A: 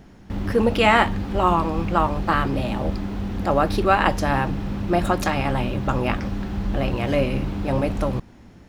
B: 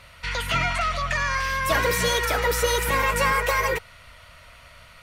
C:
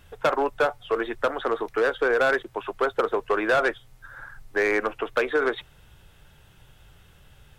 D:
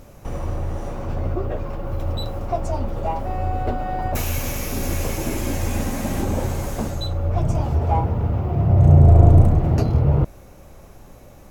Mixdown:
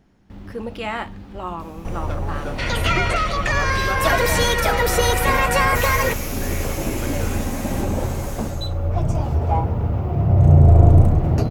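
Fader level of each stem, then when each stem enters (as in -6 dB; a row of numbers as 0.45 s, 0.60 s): -11.0 dB, +3.0 dB, -13.0 dB, 0.0 dB; 0.00 s, 2.35 s, 1.85 s, 1.60 s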